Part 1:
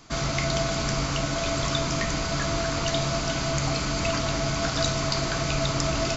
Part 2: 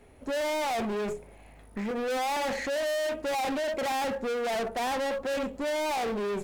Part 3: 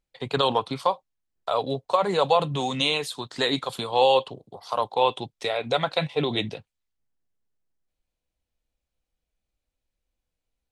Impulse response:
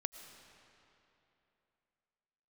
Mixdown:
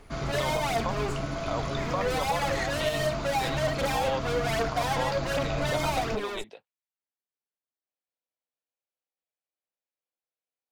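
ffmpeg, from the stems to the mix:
-filter_complex "[0:a]lowpass=frequency=1700:poles=1,volume=-4dB[link_01];[1:a]equalizer=frequency=210:width=0.75:gain=-11.5,aphaser=in_gain=1:out_gain=1:delay=3.2:decay=0.59:speed=1.3:type=triangular,volume=1.5dB[link_02];[2:a]highpass=480,highshelf=frequency=3100:gain=-9.5,volume=-7dB[link_03];[link_01][link_02][link_03]amix=inputs=3:normalize=0,alimiter=limit=-17.5dB:level=0:latency=1:release=133"

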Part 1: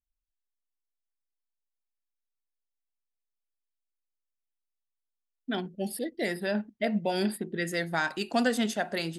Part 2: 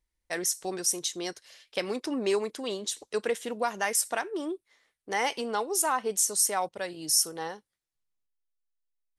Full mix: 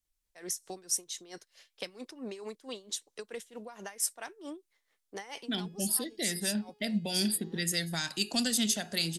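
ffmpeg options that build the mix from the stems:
ffmpeg -i stem1.wav -i stem2.wav -filter_complex "[0:a]equalizer=frequency=8700:width=0.36:gain=8,bandreject=frequency=419.7:width_type=h:width=4,bandreject=frequency=839.4:width_type=h:width=4,bandreject=frequency=1259.1:width_type=h:width=4,bandreject=frequency=1678.8:width_type=h:width=4,bandreject=frequency=2098.5:width_type=h:width=4,bandreject=frequency=2518.2:width_type=h:width=4,bandreject=frequency=2937.9:width_type=h:width=4,bandreject=frequency=3357.6:width_type=h:width=4,bandreject=frequency=3777.3:width_type=h:width=4,bandreject=frequency=4197:width_type=h:width=4,bandreject=frequency=4616.7:width_type=h:width=4,bandreject=frequency=5036.4:width_type=h:width=4,bandreject=frequency=5456.1:width_type=h:width=4,bandreject=frequency=5875.8:width_type=h:width=4,bandreject=frequency=6295.5:width_type=h:width=4,bandreject=frequency=6715.2:width_type=h:width=4,bandreject=frequency=7134.9:width_type=h:width=4,volume=3dB,asplit=2[link_01][link_02];[1:a]aeval=exprs='val(0)*pow(10,-18*(0.5-0.5*cos(2*PI*4.5*n/s))/20)':channel_layout=same,adelay=50,volume=-3dB[link_03];[link_02]apad=whole_len=407439[link_04];[link_03][link_04]sidechaincompress=threshold=-29dB:ratio=3:attack=16:release=548[link_05];[link_01][link_05]amix=inputs=2:normalize=0,acrossover=split=200|3000[link_06][link_07][link_08];[link_07]acompressor=threshold=-39dB:ratio=6[link_09];[link_06][link_09][link_08]amix=inputs=3:normalize=0" out.wav

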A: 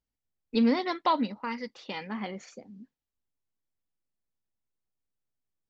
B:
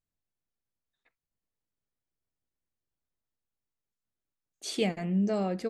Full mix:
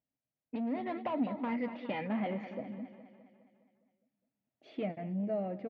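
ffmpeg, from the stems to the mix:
ffmpeg -i stem1.wav -i stem2.wav -filter_complex "[0:a]acompressor=threshold=-30dB:ratio=6,volume=-2.5dB,asplit=2[link_01][link_02];[link_02]volume=-14dB[link_03];[1:a]volume=-13.5dB,asplit=2[link_04][link_05];[link_05]volume=-20dB[link_06];[link_03][link_06]amix=inputs=2:normalize=0,aecho=0:1:206|412|618|824|1030|1236|1442|1648:1|0.56|0.314|0.176|0.0983|0.0551|0.0308|0.0173[link_07];[link_01][link_04][link_07]amix=inputs=3:normalize=0,asoftclip=type=tanh:threshold=-36dB,dynaudnorm=framelen=250:gausssize=7:maxgain=6dB,highpass=120,equalizer=frequency=130:width_type=q:width=4:gain=9,equalizer=frequency=270:width_type=q:width=4:gain=7,equalizer=frequency=400:width_type=q:width=4:gain=-4,equalizer=frequency=630:width_type=q:width=4:gain=9,equalizer=frequency=1100:width_type=q:width=4:gain=-6,equalizer=frequency=1500:width_type=q:width=4:gain=-6,lowpass=frequency=2500:width=0.5412,lowpass=frequency=2500:width=1.3066" out.wav

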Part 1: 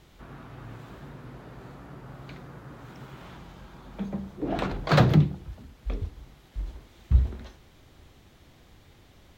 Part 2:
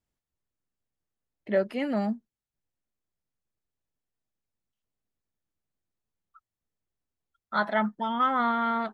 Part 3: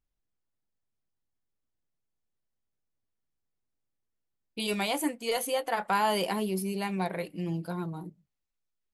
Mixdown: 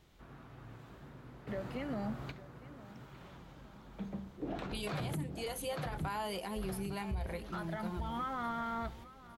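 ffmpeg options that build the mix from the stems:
ffmpeg -i stem1.wav -i stem2.wav -i stem3.wav -filter_complex "[0:a]volume=0dB,asplit=2[link_01][link_02];[link_02]volume=-19dB[link_03];[1:a]alimiter=limit=-22dB:level=0:latency=1:release=191,volume=-8dB,asplit=3[link_04][link_05][link_06];[link_05]volume=-19dB[link_07];[2:a]adelay=150,volume=-7.5dB,asplit=2[link_08][link_09];[link_09]volume=-17dB[link_10];[link_06]apad=whole_len=413274[link_11];[link_01][link_11]sidechaingate=range=-9dB:threshold=-60dB:ratio=16:detection=peak[link_12];[link_03][link_07][link_10]amix=inputs=3:normalize=0,aecho=0:1:856|1712|2568|3424|4280|5136:1|0.44|0.194|0.0852|0.0375|0.0165[link_13];[link_12][link_04][link_08][link_13]amix=inputs=4:normalize=0,alimiter=level_in=5.5dB:limit=-24dB:level=0:latency=1:release=119,volume=-5.5dB" out.wav

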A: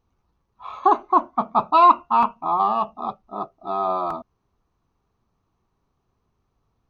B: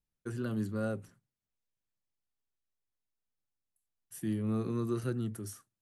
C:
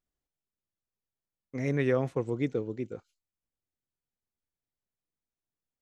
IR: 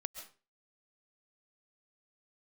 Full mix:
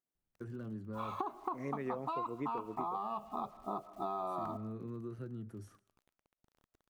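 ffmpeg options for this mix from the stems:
-filter_complex "[0:a]lowshelf=frequency=450:gain=4,acompressor=threshold=-24dB:ratio=3,acrusher=bits=9:mix=0:aa=0.000001,adelay=350,volume=-7dB,asplit=2[link_01][link_02];[link_02]volume=-9.5dB[link_03];[1:a]lowpass=frequency=1200:poles=1,acompressor=threshold=-46dB:ratio=2.5,adelay=150,volume=-1dB,asplit=2[link_04][link_05];[link_05]volume=-12dB[link_06];[2:a]highpass=170,equalizer=frequency=4000:width_type=o:width=1.2:gain=-12.5,volume=-3.5dB[link_07];[3:a]atrim=start_sample=2205[link_08];[link_03][link_06]amix=inputs=2:normalize=0[link_09];[link_09][link_08]afir=irnorm=-1:irlink=0[link_10];[link_01][link_04][link_07][link_10]amix=inputs=4:normalize=0,acompressor=threshold=-35dB:ratio=6"

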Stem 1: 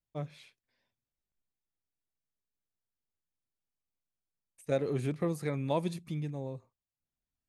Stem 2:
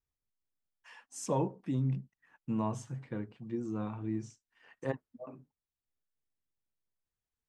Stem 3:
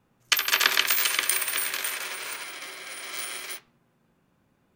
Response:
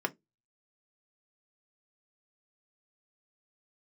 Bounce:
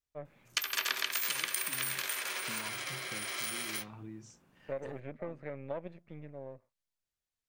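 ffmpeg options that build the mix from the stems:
-filter_complex "[0:a]aeval=exprs='if(lt(val(0),0),0.251*val(0),val(0))':channel_layout=same,lowpass=frequency=2000:width_type=q:width=2.4,equalizer=frequency=570:width=2.3:gain=11.5,volume=-10.5dB[link_01];[1:a]equalizer=frequency=4800:width=0.33:gain=8,acompressor=threshold=-37dB:ratio=6,volume=-5.5dB[link_02];[2:a]adelay=250,volume=0.5dB[link_03];[link_01][link_02][link_03]amix=inputs=3:normalize=0,acompressor=threshold=-35dB:ratio=2.5"

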